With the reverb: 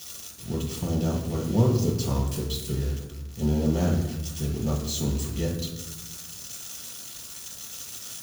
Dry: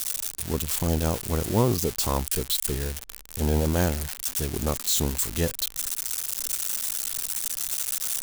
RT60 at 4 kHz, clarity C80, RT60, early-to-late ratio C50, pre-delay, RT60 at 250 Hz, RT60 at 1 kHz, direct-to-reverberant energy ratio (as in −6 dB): 0.75 s, 8.0 dB, 1.1 s, 5.0 dB, 3 ms, 1.5 s, 1.0 s, −3.5 dB